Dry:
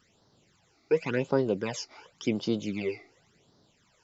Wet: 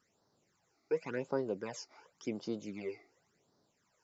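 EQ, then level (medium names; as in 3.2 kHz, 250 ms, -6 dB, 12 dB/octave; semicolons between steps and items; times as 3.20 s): bass shelf 70 Hz -6 dB; bass shelf 240 Hz -7 dB; peaking EQ 3.2 kHz -10.5 dB 0.89 oct; -6.5 dB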